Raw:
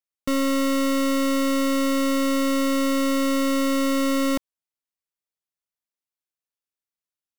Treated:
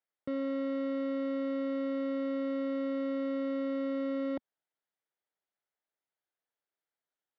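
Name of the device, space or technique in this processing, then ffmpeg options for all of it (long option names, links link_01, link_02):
overdrive pedal into a guitar cabinet: -filter_complex "[0:a]asplit=2[link_01][link_02];[link_02]highpass=frequency=720:poles=1,volume=24dB,asoftclip=type=tanh:threshold=-21dB[link_03];[link_01][link_03]amix=inputs=2:normalize=0,lowpass=frequency=1100:poles=1,volume=-6dB,highpass=84,equalizer=frequency=240:width_type=q:width=4:gain=-4,equalizer=frequency=1100:width_type=q:width=4:gain=-7,equalizer=frequency=2600:width_type=q:width=4:gain=-8,lowpass=frequency=3800:width=0.5412,lowpass=frequency=3800:width=1.3066,volume=-7dB"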